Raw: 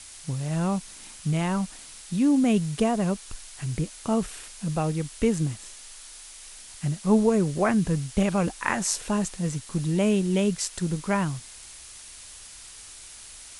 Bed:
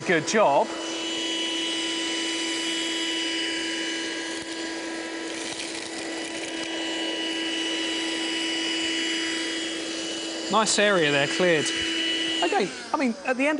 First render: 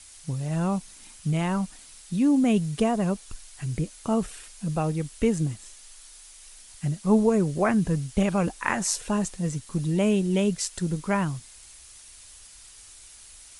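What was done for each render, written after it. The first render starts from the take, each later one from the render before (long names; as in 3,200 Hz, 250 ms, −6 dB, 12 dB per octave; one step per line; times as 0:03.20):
broadband denoise 6 dB, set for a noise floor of −45 dBFS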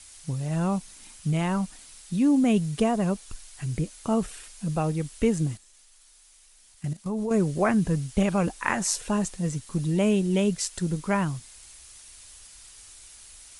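0:05.57–0:07.31: output level in coarse steps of 14 dB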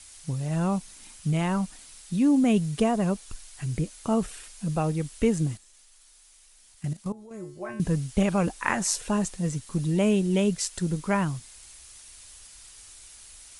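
0:07.12–0:07.80: tuned comb filter 120 Hz, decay 0.53 s, harmonics odd, mix 90%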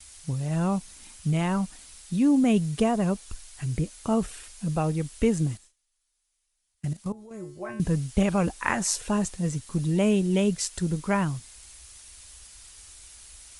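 parametric band 63 Hz +7.5 dB
noise gate with hold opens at −41 dBFS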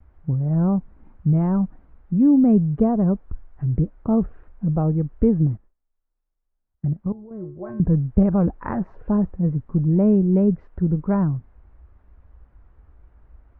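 low-pass filter 1,500 Hz 24 dB per octave
tilt shelving filter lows +8 dB, about 710 Hz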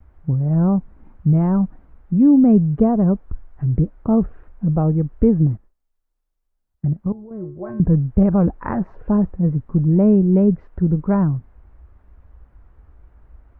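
level +3 dB
brickwall limiter −3 dBFS, peak gain reduction 2.5 dB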